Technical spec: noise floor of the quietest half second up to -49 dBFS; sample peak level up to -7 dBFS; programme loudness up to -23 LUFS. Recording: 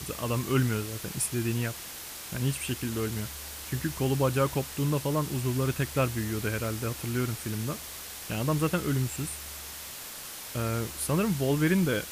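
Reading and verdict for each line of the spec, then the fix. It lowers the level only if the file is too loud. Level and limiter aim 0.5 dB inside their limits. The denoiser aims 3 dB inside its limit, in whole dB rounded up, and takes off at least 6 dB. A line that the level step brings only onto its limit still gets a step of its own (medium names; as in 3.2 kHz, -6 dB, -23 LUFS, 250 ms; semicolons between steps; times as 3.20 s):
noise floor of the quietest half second -41 dBFS: fail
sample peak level -13.5 dBFS: pass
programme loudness -30.0 LUFS: pass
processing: noise reduction 11 dB, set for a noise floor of -41 dBFS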